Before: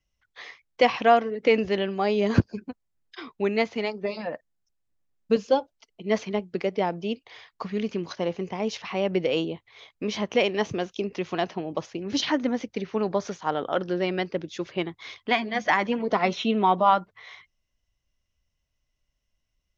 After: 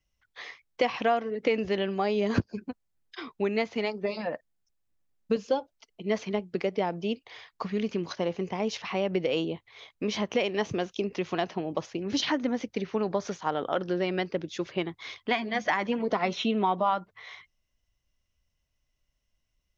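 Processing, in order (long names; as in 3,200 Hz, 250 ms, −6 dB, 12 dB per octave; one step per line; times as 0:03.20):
downward compressor 2.5 to 1, threshold −24 dBFS, peak gain reduction 8 dB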